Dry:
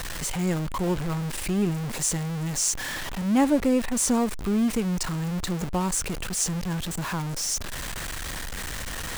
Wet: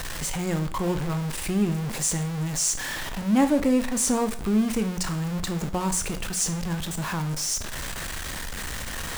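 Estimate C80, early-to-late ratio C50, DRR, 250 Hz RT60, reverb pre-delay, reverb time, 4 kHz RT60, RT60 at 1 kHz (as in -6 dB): 17.5 dB, 13.5 dB, 8.5 dB, 0.50 s, 7 ms, 0.50 s, 0.45 s, 0.45 s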